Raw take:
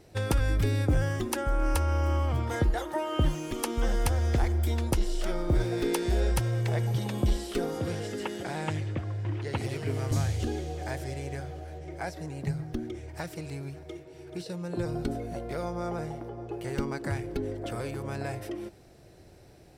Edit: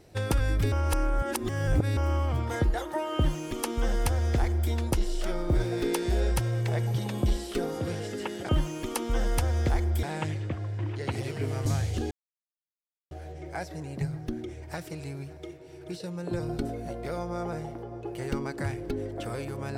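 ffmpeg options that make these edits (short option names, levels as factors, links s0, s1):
-filter_complex "[0:a]asplit=7[s0][s1][s2][s3][s4][s5][s6];[s0]atrim=end=0.722[s7];[s1]atrim=start=0.718:end=1.972,asetpts=PTS-STARTPTS,areverse[s8];[s2]atrim=start=1.968:end=8.492[s9];[s3]atrim=start=3.168:end=4.712[s10];[s4]atrim=start=8.488:end=10.57,asetpts=PTS-STARTPTS,afade=t=out:st=2.078:d=0.004:c=hsin[s11];[s5]atrim=start=10.57:end=11.57,asetpts=PTS-STARTPTS,volume=0[s12];[s6]atrim=start=11.57,asetpts=PTS-STARTPTS,afade=t=in:d=0.004:c=hsin[s13];[s7][s8]acrossfade=d=0.004:c1=hsin:c2=hsin[s14];[s14][s9]acrossfade=d=0.004:c1=hsin:c2=hsin[s15];[s15][s10]acrossfade=d=0.004:c1=hsin:c2=hsin[s16];[s11][s12][s13]concat=n=3:v=0:a=1[s17];[s16][s17]acrossfade=d=0.004:c1=hsin:c2=hsin"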